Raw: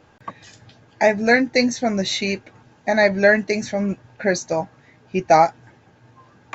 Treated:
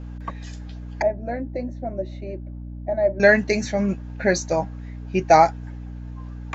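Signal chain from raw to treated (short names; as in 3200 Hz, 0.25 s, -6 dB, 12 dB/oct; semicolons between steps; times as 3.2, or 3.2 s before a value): 1.02–3.2 double band-pass 450 Hz, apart 0.72 oct; hum 60 Hz, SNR 11 dB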